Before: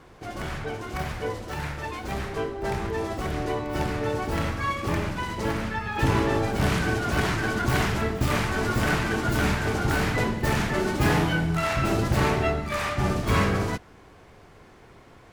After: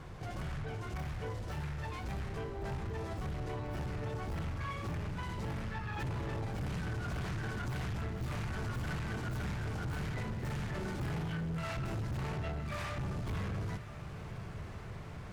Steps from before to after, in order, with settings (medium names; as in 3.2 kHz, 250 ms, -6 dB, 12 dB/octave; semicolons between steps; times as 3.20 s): resonant low shelf 200 Hz +7 dB, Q 1.5; compression 2:1, threshold -41 dBFS, peak gain reduction 16.5 dB; echo that smears into a reverb 1069 ms, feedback 67%, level -15.5 dB; saturation -33 dBFS, distortion -10 dB; loudspeaker Doppler distortion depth 0.11 ms